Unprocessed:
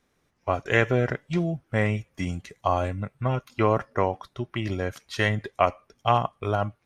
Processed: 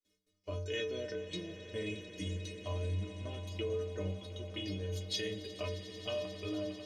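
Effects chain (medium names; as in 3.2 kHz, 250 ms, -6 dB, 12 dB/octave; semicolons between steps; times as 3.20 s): FFT filter 720 Hz 0 dB, 1.5 kHz -15 dB, 7 kHz -4 dB; in parallel at -2 dB: compression, threshold -33 dBFS, peak gain reduction 15.5 dB; on the sum: static phaser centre 340 Hz, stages 4; gate with hold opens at -59 dBFS; inharmonic resonator 91 Hz, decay 0.75 s, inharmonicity 0.03; peak limiter -37 dBFS, peak gain reduction 11.5 dB; peaking EQ 3.7 kHz +14.5 dB 1.8 oct; on a send: echo with a slow build-up 89 ms, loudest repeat 8, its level -18 dB; on the sum: trim +5.5 dB; Opus 64 kbps 48 kHz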